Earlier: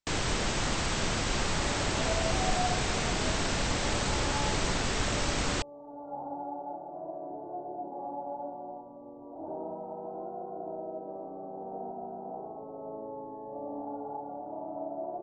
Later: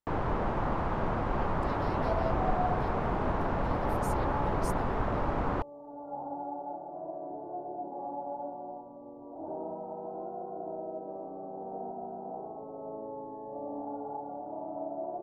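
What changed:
first sound: add low-pass with resonance 1,000 Hz, resonance Q 1.6
master: remove linear-phase brick-wall low-pass 8,400 Hz

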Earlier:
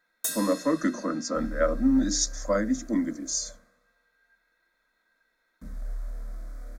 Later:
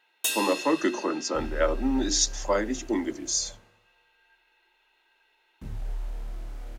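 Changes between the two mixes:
speech: add high-pass filter 330 Hz 12 dB per octave
master: remove phaser with its sweep stopped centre 570 Hz, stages 8

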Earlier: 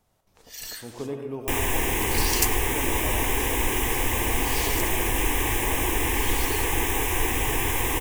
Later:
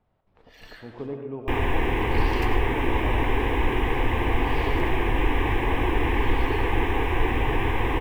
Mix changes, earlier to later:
first sound: send +10.0 dB
second sound +4.0 dB
master: add high-frequency loss of the air 440 metres

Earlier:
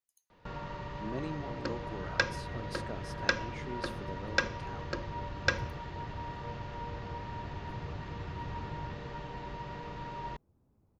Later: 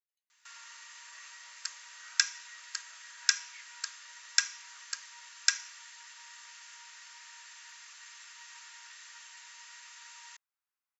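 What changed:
speech: add high-frequency loss of the air 340 metres
first sound: remove low-pass filter 3,900 Hz 24 dB per octave
master: add inverse Chebyshev high-pass filter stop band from 260 Hz, stop band 80 dB

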